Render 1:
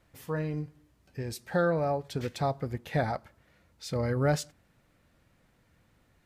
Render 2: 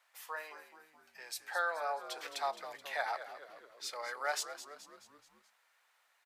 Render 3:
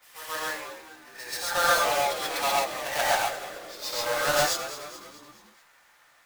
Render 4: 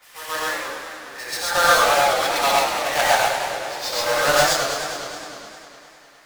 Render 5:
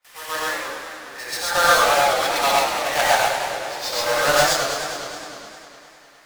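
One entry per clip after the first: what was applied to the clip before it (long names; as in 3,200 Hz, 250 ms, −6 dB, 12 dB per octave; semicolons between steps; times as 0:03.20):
high-pass filter 800 Hz 24 dB per octave; echo with shifted repeats 214 ms, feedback 52%, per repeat −75 Hz, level −12 dB
each half-wave held at its own peak; backwards echo 132 ms −10.5 dB; reverb whose tail is shaped and stops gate 160 ms rising, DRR −5 dB; level +2.5 dB
high-shelf EQ 11,000 Hz −5 dB; feedback echo with a swinging delay time 102 ms, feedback 79%, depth 163 cents, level −9 dB; level +6.5 dB
noise gate with hold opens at −42 dBFS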